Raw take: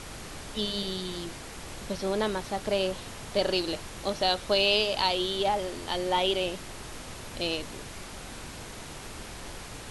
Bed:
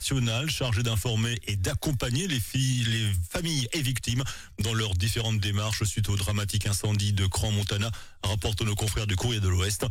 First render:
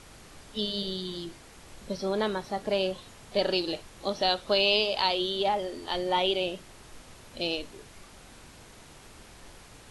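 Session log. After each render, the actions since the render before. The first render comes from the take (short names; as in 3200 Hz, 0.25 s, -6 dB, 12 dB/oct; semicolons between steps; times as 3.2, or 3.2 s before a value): noise print and reduce 9 dB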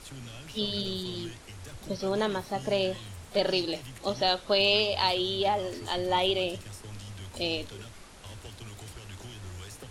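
add bed -17.5 dB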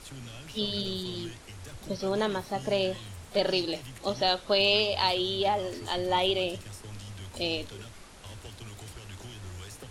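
nothing audible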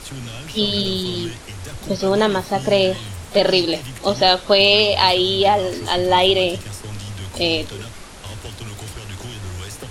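gain +11.5 dB; limiter -2 dBFS, peak gain reduction 2.5 dB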